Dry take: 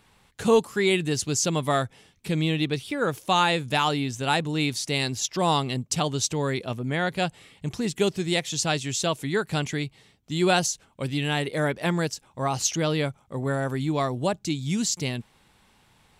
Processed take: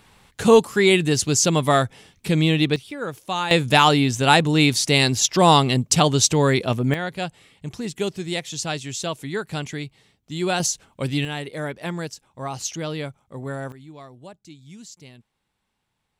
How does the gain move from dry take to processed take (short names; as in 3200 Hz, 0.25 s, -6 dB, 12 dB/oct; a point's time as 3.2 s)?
+6 dB
from 2.76 s -4 dB
from 3.51 s +8.5 dB
from 6.94 s -2 dB
from 10.6 s +4 dB
from 11.25 s -4 dB
from 13.72 s -16.5 dB